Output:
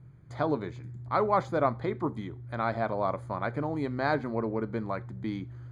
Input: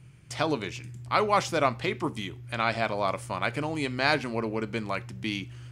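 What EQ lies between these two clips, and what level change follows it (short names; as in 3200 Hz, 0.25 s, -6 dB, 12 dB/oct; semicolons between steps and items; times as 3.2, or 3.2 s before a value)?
running mean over 16 samples; 0.0 dB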